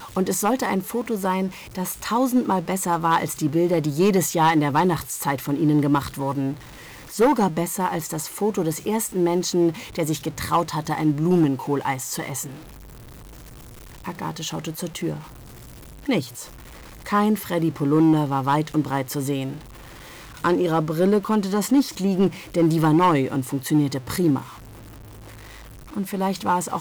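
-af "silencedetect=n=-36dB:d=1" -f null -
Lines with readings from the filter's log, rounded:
silence_start: 12.58
silence_end: 14.05 | silence_duration: 1.47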